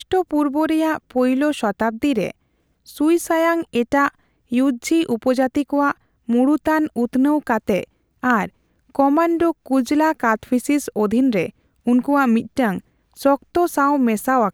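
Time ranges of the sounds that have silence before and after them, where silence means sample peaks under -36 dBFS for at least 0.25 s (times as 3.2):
2.88–4.09
4.51–5.92
6.29–7.84
8.23–8.48
8.95–11.5
11.87–12.8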